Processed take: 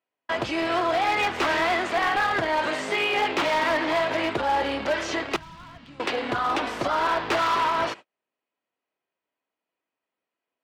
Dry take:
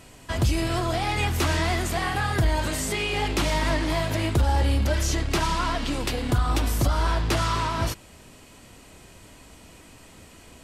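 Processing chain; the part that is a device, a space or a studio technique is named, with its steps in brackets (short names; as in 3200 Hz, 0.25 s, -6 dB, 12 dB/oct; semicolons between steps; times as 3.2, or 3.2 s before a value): walkie-talkie (BPF 440–2700 Hz; hard clip -25 dBFS, distortion -15 dB; gate -44 dBFS, range -40 dB); 5.36–6 EQ curve 150 Hz 0 dB, 400 Hz -26 dB, 6200 Hz -18 dB; gain +6.5 dB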